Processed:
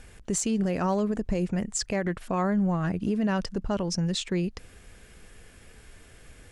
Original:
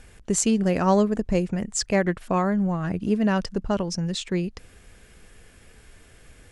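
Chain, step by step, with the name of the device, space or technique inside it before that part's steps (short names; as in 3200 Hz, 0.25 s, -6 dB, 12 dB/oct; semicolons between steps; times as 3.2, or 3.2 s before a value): clipper into limiter (hard clip -11 dBFS, distortion -35 dB; limiter -18.5 dBFS, peak gain reduction 7.5 dB)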